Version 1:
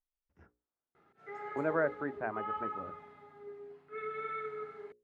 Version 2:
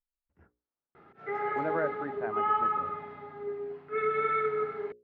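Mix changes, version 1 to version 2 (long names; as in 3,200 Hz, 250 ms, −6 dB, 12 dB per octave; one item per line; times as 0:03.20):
background +12.0 dB
master: add high-frequency loss of the air 210 metres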